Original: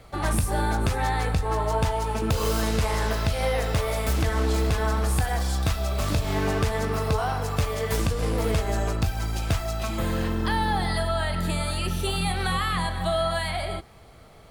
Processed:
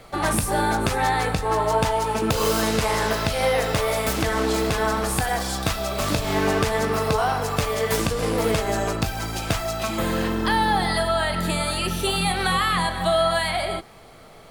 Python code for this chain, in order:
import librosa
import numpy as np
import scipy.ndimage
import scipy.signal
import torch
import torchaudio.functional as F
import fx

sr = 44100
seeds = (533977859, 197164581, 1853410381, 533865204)

y = fx.peak_eq(x, sr, hz=64.0, db=-13.5, octaves=1.5)
y = y * librosa.db_to_amplitude(5.5)